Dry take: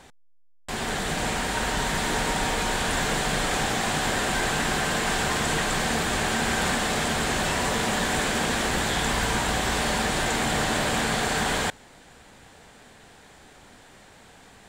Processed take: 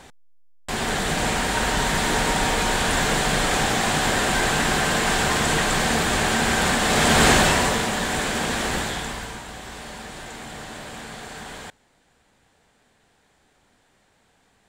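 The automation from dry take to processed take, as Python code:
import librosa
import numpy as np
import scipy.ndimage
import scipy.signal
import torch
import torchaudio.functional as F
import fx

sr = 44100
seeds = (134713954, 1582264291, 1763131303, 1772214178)

y = fx.gain(x, sr, db=fx.line((6.79, 4.0), (7.27, 11.0), (7.91, 0.5), (8.76, 0.5), (9.44, -12.0)))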